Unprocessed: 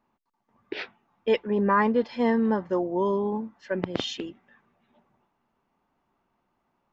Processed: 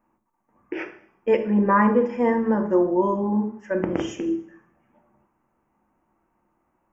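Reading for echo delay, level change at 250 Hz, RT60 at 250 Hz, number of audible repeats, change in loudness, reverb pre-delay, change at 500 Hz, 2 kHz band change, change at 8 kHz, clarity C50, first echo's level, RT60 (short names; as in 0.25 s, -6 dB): none, +5.0 dB, 0.65 s, none, +4.0 dB, 3 ms, +3.5 dB, +2.0 dB, n/a, 10.0 dB, none, 0.60 s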